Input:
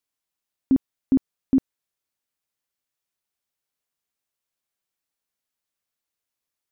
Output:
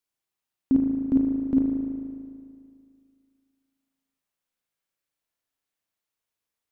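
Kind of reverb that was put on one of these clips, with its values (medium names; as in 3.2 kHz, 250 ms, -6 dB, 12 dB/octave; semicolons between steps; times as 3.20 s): spring tank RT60 2.2 s, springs 37 ms, chirp 50 ms, DRR 0 dB; trim -2.5 dB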